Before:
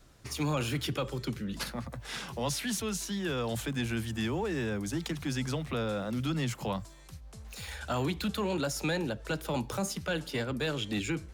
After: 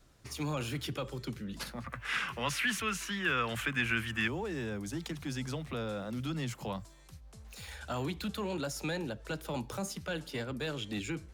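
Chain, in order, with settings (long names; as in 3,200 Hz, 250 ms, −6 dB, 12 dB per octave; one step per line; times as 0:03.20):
0:01.84–0:04.28: flat-topped bell 1,800 Hz +13.5 dB
level −4.5 dB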